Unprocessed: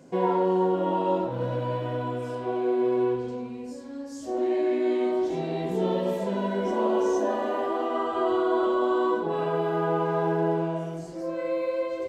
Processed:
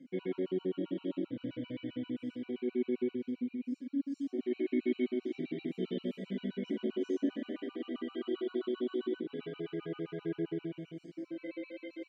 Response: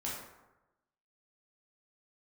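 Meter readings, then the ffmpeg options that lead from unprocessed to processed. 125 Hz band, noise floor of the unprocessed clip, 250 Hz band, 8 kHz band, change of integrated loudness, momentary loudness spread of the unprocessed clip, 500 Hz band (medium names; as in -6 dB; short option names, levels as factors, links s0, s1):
-13.5 dB, -38 dBFS, -6.0 dB, no reading, -11.0 dB, 9 LU, -13.0 dB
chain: -filter_complex "[0:a]asplit=3[s0][s1][s2];[s0]bandpass=f=270:t=q:w=8,volume=1[s3];[s1]bandpass=f=2290:t=q:w=8,volume=0.501[s4];[s2]bandpass=f=3010:t=q:w=8,volume=0.355[s5];[s3][s4][s5]amix=inputs=3:normalize=0,afftfilt=real='re*gt(sin(2*PI*7.6*pts/sr)*(1-2*mod(floor(b*sr/1024/760),2)),0)':imag='im*gt(sin(2*PI*7.6*pts/sr)*(1-2*mod(floor(b*sr/1024/760),2)),0)':win_size=1024:overlap=0.75,volume=2.37"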